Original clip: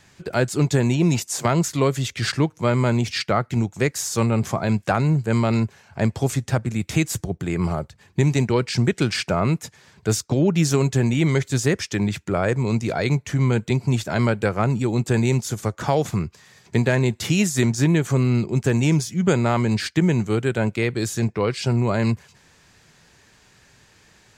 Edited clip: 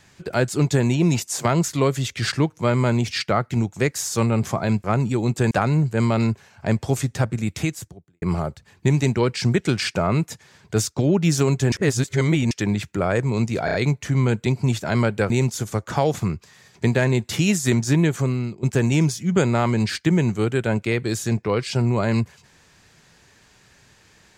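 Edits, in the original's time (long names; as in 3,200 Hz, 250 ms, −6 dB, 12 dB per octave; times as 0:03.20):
0:06.86–0:07.55: fade out quadratic
0:11.05–0:11.84: reverse
0:12.98: stutter 0.03 s, 4 plays
0:14.54–0:15.21: move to 0:04.84
0:18.01–0:18.54: fade out, to −16 dB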